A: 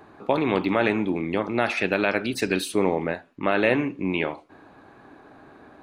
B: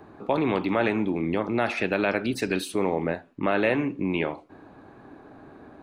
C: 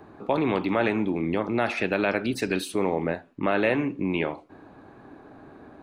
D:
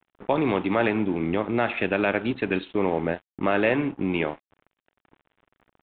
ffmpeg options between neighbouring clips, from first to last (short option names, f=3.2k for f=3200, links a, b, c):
-filter_complex "[0:a]tiltshelf=f=740:g=4,acrossover=split=640|3800[a][b][c];[a]alimiter=limit=-18dB:level=0:latency=1:release=194[d];[d][b][c]amix=inputs=3:normalize=0"
-af anull
-af "aeval=exprs='sgn(val(0))*max(abs(val(0))-0.00891,0)':c=same,aresample=8000,aresample=44100,volume=2dB"